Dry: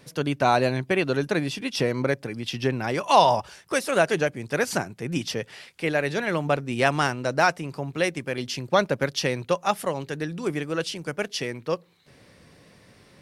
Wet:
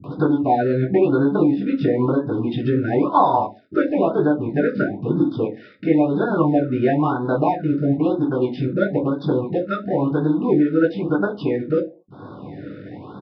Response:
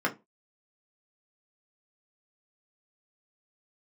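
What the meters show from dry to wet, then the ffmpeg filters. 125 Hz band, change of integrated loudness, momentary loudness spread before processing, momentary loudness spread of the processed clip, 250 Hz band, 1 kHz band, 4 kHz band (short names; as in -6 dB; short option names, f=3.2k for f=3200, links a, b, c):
+6.5 dB, +5.5 dB, 9 LU, 7 LU, +11.5 dB, +2.5 dB, under -10 dB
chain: -filter_complex "[0:a]asplit=2[a][b];[b]acompressor=mode=upward:threshold=-23dB:ratio=2.5,volume=-0.5dB[c];[a][c]amix=inputs=2:normalize=0,highpass=f=79:p=1,equalizer=f=290:t=o:w=0.3:g=13.5,acompressor=threshold=-17dB:ratio=6,highshelf=f=2.4k:g=-11.5,aresample=11025,aeval=exprs='sgn(val(0))*max(abs(val(0))-0.00944,0)':c=same,aresample=44100,acrossover=split=210[d][e];[e]adelay=40[f];[d][f]amix=inputs=2:normalize=0[g];[1:a]atrim=start_sample=2205,asetrate=30870,aresample=44100[h];[g][h]afir=irnorm=-1:irlink=0,afftfilt=real='re*(1-between(b*sr/1024,860*pow(2400/860,0.5+0.5*sin(2*PI*1*pts/sr))/1.41,860*pow(2400/860,0.5+0.5*sin(2*PI*1*pts/sr))*1.41))':imag='im*(1-between(b*sr/1024,860*pow(2400/860,0.5+0.5*sin(2*PI*1*pts/sr))/1.41,860*pow(2400/860,0.5+0.5*sin(2*PI*1*pts/sr))*1.41))':win_size=1024:overlap=0.75,volume=-7.5dB"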